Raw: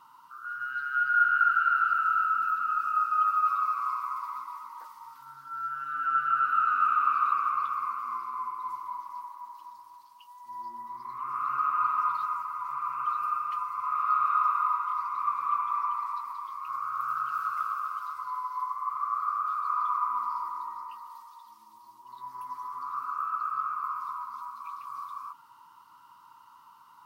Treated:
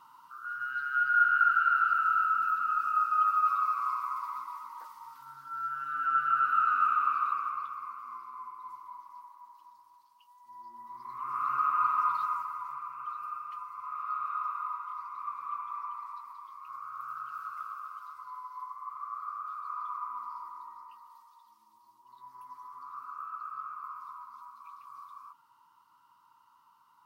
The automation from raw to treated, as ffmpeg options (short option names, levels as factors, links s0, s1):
-af "volume=2.37,afade=t=out:st=6.73:d=1.02:silence=0.398107,afade=t=in:st=10.66:d=0.78:silence=0.375837,afade=t=out:st=12.34:d=0.55:silence=0.375837"